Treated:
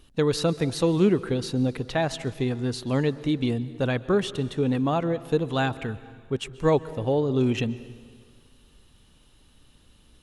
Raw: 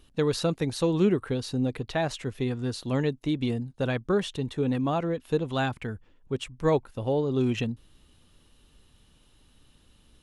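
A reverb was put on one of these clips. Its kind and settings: plate-style reverb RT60 1.8 s, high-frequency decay 0.9×, pre-delay 115 ms, DRR 16.5 dB; trim +2.5 dB

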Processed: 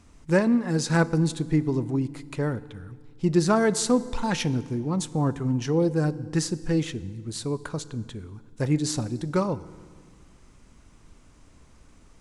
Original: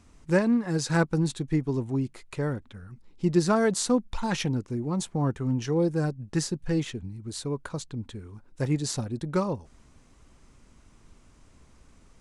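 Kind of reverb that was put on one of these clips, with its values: FDN reverb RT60 1.8 s, low-frequency decay 1.35×, high-frequency decay 0.8×, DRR 16 dB; trim +2 dB

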